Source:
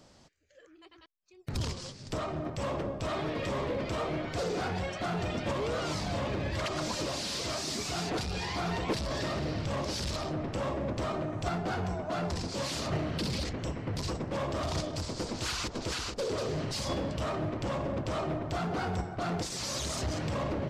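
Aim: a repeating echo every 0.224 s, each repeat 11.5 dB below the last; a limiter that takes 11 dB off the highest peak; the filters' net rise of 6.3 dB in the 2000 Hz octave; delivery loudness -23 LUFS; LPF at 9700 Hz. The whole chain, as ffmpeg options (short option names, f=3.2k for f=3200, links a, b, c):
-af "lowpass=9.7k,equalizer=f=2k:t=o:g=8,alimiter=level_in=6.5dB:limit=-24dB:level=0:latency=1,volume=-6.5dB,aecho=1:1:224|448|672:0.266|0.0718|0.0194,volume=14.5dB"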